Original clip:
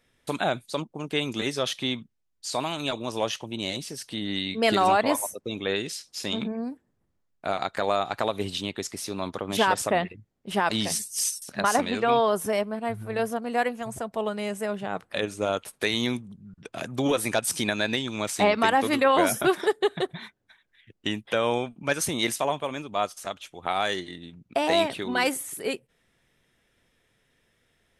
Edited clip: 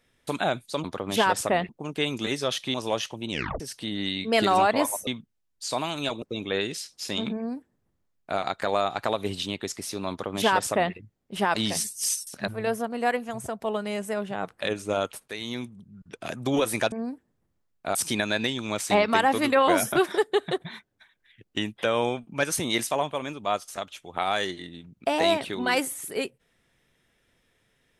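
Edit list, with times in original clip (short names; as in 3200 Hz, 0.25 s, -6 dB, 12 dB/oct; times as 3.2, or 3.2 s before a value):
1.89–3.04 move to 5.37
3.61 tape stop 0.29 s
6.51–7.54 copy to 17.44
9.25–10.1 copy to 0.84
11.63–13 cut
15.8–16.69 fade in, from -12 dB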